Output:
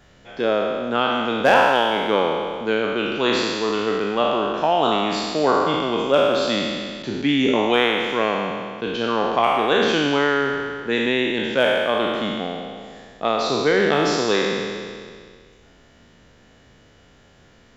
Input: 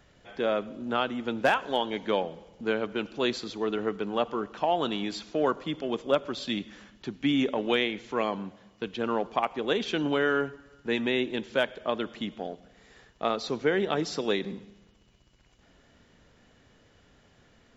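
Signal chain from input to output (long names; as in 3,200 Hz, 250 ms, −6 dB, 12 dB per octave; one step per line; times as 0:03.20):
peak hold with a decay on every bin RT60 2.03 s
level +4.5 dB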